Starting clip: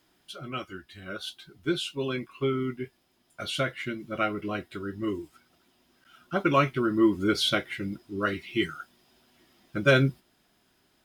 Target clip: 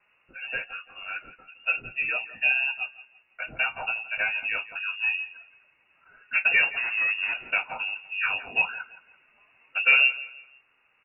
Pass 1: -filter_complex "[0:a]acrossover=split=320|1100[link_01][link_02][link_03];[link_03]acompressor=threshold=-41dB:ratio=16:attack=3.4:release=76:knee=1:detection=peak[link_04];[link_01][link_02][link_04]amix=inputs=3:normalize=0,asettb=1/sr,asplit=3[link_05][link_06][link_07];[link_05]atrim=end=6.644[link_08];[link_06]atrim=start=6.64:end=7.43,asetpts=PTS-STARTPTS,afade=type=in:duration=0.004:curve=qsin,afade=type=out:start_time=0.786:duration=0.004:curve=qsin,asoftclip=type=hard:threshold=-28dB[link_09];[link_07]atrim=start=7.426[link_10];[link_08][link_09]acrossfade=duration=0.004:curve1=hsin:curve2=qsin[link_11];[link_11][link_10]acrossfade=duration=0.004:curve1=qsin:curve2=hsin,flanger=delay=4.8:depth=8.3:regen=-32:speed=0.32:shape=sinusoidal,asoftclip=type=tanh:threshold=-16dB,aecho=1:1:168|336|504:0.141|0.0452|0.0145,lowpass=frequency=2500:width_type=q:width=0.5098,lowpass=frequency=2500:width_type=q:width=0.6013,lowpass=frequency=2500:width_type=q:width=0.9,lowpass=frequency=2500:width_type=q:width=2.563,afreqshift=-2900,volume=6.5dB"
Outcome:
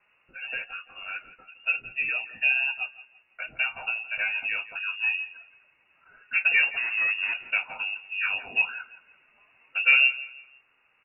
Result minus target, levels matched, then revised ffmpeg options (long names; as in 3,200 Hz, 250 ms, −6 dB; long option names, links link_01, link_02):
downward compressor: peak gain reduction +9 dB
-filter_complex "[0:a]acrossover=split=320|1100[link_01][link_02][link_03];[link_03]acompressor=threshold=-31.5dB:ratio=16:attack=3.4:release=76:knee=1:detection=peak[link_04];[link_01][link_02][link_04]amix=inputs=3:normalize=0,asettb=1/sr,asplit=3[link_05][link_06][link_07];[link_05]atrim=end=6.644[link_08];[link_06]atrim=start=6.64:end=7.43,asetpts=PTS-STARTPTS,afade=type=in:duration=0.004:curve=qsin,afade=type=out:start_time=0.786:duration=0.004:curve=qsin,asoftclip=type=hard:threshold=-28dB[link_09];[link_07]atrim=start=7.426[link_10];[link_08][link_09]acrossfade=duration=0.004:curve1=hsin:curve2=qsin[link_11];[link_11][link_10]acrossfade=duration=0.004:curve1=qsin:curve2=hsin,flanger=delay=4.8:depth=8.3:regen=-32:speed=0.32:shape=sinusoidal,asoftclip=type=tanh:threshold=-16dB,aecho=1:1:168|336|504:0.141|0.0452|0.0145,lowpass=frequency=2500:width_type=q:width=0.5098,lowpass=frequency=2500:width_type=q:width=0.6013,lowpass=frequency=2500:width_type=q:width=0.9,lowpass=frequency=2500:width_type=q:width=2.563,afreqshift=-2900,volume=6.5dB"